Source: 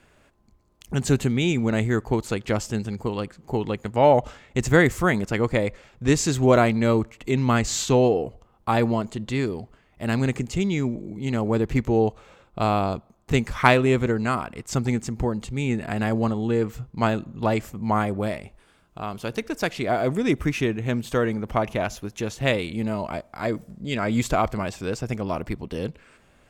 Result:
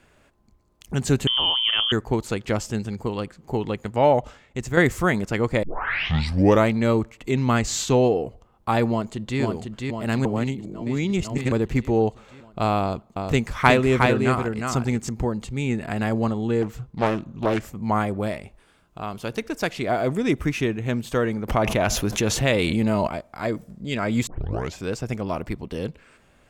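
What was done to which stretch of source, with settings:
0:01.27–0:01.92: voice inversion scrambler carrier 3,300 Hz
0:03.90–0:04.77: fade out, to −8 dB
0:05.63: tape start 1.06 s
0:08.89–0:09.40: delay throw 500 ms, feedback 65%, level −3.5 dB
0:10.25–0:11.52: reverse
0:12.80–0:15.09: single-tap delay 361 ms −4 dB
0:16.62–0:17.66: highs frequency-modulated by the lows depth 0.54 ms
0:21.48–0:23.08: envelope flattener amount 70%
0:24.27: tape start 0.51 s

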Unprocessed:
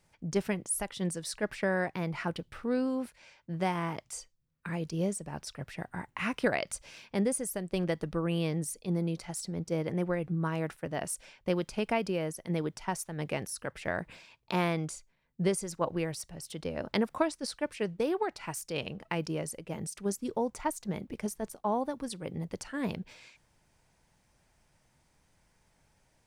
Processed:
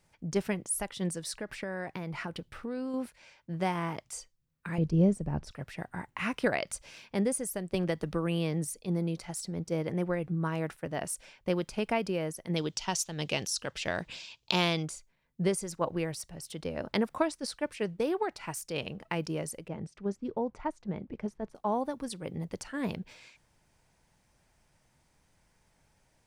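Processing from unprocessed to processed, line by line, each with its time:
0:01.31–0:02.94: downward compressor, threshold −32 dBFS
0:04.78–0:05.51: spectral tilt −3.5 dB per octave
0:07.74–0:08.68: multiband upward and downward compressor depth 70%
0:12.56–0:14.83: flat-topped bell 4,500 Hz +12.5 dB
0:19.68–0:21.55: head-to-tape spacing loss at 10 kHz 27 dB

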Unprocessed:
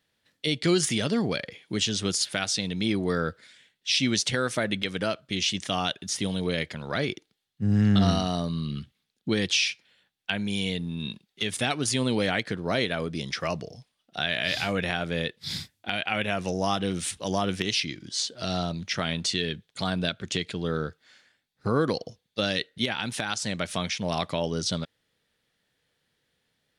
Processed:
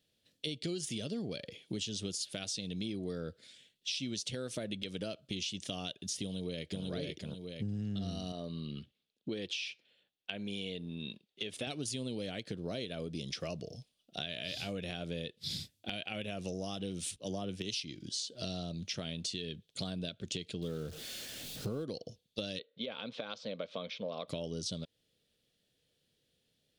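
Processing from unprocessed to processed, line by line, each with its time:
0:06.23–0:06.85: delay throw 490 ms, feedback 20%, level −1 dB
0:08.32–0:11.67: bass and treble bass −10 dB, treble −12 dB
0:17.16–0:17.83: multiband upward and downward expander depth 70%
0:20.62–0:21.84: converter with a step at zero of −35.5 dBFS
0:22.59–0:24.28: loudspeaker in its box 320–3,300 Hz, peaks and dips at 350 Hz −10 dB, 510 Hz +7 dB, 780 Hz −5 dB, 1,100 Hz +6 dB, 1,800 Hz −7 dB, 2,800 Hz −9 dB
whole clip: flat-topped bell 1,300 Hz −11 dB; notch filter 980 Hz, Q 28; downward compressor 6 to 1, threshold −34 dBFS; level −1.5 dB

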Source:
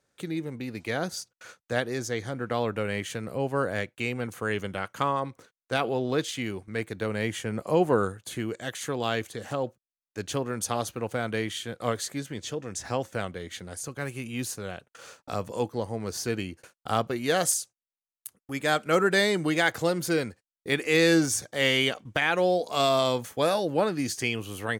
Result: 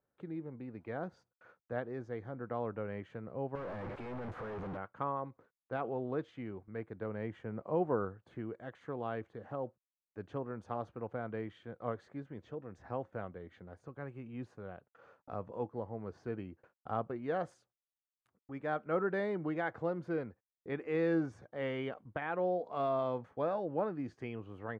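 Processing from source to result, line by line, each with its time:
0:03.55–0:04.77: sign of each sample alone
whole clip: Chebyshev low-pass filter 1,100 Hz, order 2; level −9 dB

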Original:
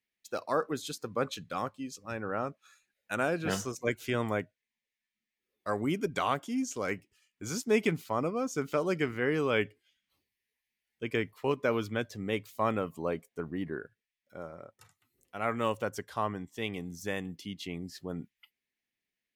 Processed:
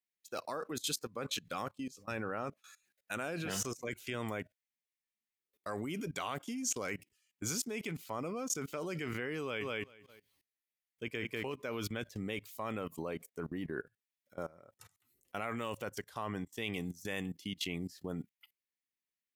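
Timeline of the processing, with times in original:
0:09.41–0:11.54: repeating echo 195 ms, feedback 18%, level −5.5 dB
whole clip: dynamic equaliser 2,600 Hz, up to +4 dB, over −49 dBFS, Q 1.5; output level in coarse steps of 21 dB; high-shelf EQ 5,400 Hz +9 dB; level +3.5 dB

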